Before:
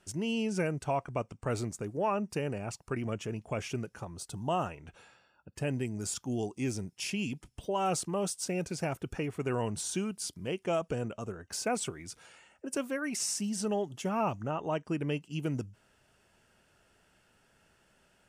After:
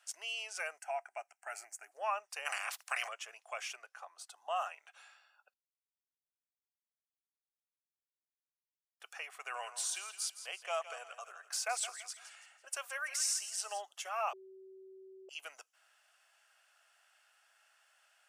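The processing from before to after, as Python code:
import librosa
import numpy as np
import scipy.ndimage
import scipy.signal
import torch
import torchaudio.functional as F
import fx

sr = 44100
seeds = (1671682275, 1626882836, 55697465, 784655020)

y = fx.fixed_phaser(x, sr, hz=750.0, stages=8, at=(0.78, 1.92))
y = fx.spec_clip(y, sr, under_db=30, at=(2.45, 3.07), fade=0.02)
y = fx.high_shelf(y, sr, hz=3600.0, db=-9.0, at=(3.75, 4.56))
y = fx.echo_thinned(y, sr, ms=166, feedback_pct=40, hz=420.0, wet_db=-12.0, at=(9.54, 13.8), fade=0.02)
y = fx.edit(y, sr, fx.silence(start_s=5.54, length_s=3.46),
    fx.bleep(start_s=14.33, length_s=0.96, hz=381.0, db=-18.5), tone=tone)
y = scipy.signal.sosfilt(scipy.signal.butter(6, 720.0, 'highpass', fs=sr, output='sos'), y)
y = fx.notch(y, sr, hz=920.0, q=6.2)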